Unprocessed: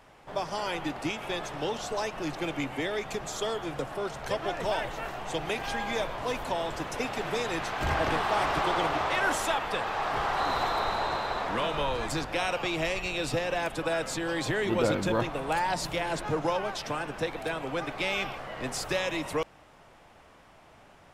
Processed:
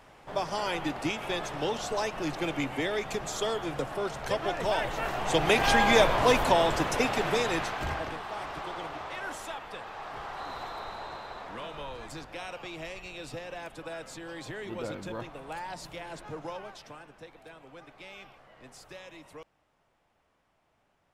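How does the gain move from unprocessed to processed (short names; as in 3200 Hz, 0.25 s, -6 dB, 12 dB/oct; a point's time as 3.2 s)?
4.7 s +1 dB
5.7 s +10 dB
6.22 s +10 dB
7.59 s +2 dB
8.17 s -10.5 dB
16.61 s -10.5 dB
17.17 s -17 dB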